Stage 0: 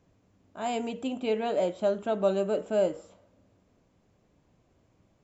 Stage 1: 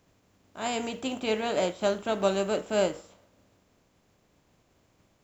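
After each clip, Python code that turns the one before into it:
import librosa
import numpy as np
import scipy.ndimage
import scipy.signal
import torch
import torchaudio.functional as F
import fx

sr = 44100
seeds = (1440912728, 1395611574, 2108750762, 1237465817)

y = fx.spec_flatten(x, sr, power=0.7)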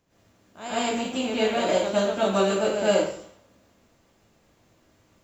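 y = fx.rev_plate(x, sr, seeds[0], rt60_s=0.54, hf_ratio=0.95, predelay_ms=95, drr_db=-10.0)
y = y * librosa.db_to_amplitude(-5.5)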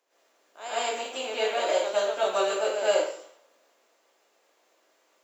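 y = scipy.signal.sosfilt(scipy.signal.butter(4, 420.0, 'highpass', fs=sr, output='sos'), x)
y = y * librosa.db_to_amplitude(-1.5)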